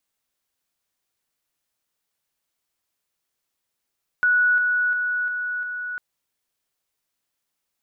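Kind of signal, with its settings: level ladder 1470 Hz -15 dBFS, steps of -3 dB, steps 5, 0.35 s 0.00 s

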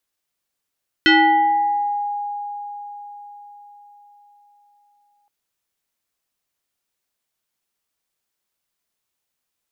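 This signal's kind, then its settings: FM tone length 4.22 s, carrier 821 Hz, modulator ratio 1.39, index 2.5, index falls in 1.23 s exponential, decay 4.84 s, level -9 dB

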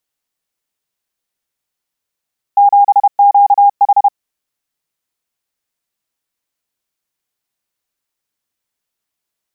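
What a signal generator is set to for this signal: Morse "7QH" 31 wpm 809 Hz -4 dBFS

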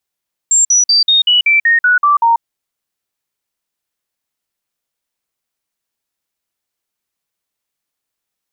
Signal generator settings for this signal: stepped sine 7410 Hz down, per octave 3, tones 10, 0.14 s, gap 0.05 s -7 dBFS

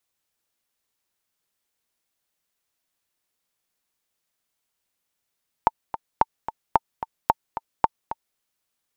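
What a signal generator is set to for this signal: metronome 221 bpm, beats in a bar 2, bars 5, 898 Hz, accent 12.5 dB -2.5 dBFS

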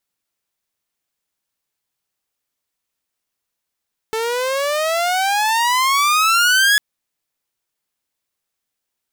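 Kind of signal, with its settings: gliding synth tone saw, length 2.65 s, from 438 Hz, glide +23.5 st, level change +8.5 dB, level -8 dB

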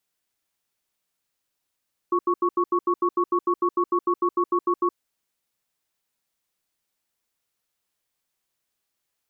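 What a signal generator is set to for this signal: cadence 352 Hz, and 1110 Hz, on 0.07 s, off 0.08 s, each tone -21 dBFS 2.79 s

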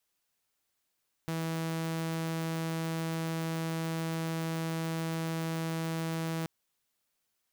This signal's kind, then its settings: tone saw 163 Hz -29 dBFS 5.18 s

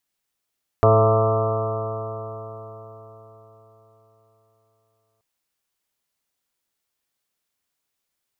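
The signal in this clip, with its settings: stretched partials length 4.38 s, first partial 108 Hz, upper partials -13/-12.5/-1/-6.5/0.5/-15.5/-11/-11/-5/-14 dB, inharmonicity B 0.0019, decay 4.40 s, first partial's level -16 dB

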